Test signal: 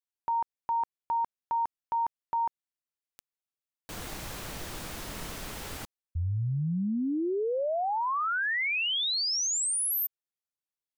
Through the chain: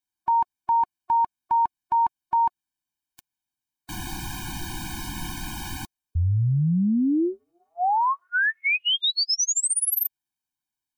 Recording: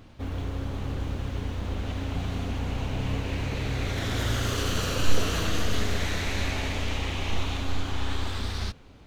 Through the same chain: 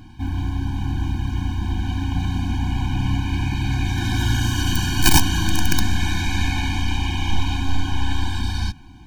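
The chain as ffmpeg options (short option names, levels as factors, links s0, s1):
-af "aeval=exprs='(mod(5.31*val(0)+1,2)-1)/5.31':c=same,afftfilt=real='re*eq(mod(floor(b*sr/1024/360),2),0)':imag='im*eq(mod(floor(b*sr/1024/360),2),0)':win_size=1024:overlap=0.75,volume=2.51"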